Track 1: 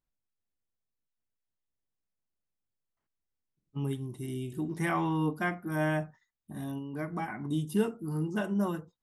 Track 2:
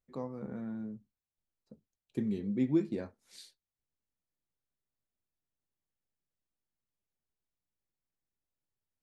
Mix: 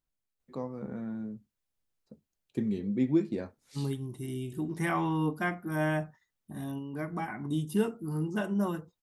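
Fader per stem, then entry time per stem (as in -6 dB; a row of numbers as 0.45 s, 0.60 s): 0.0 dB, +2.5 dB; 0.00 s, 0.40 s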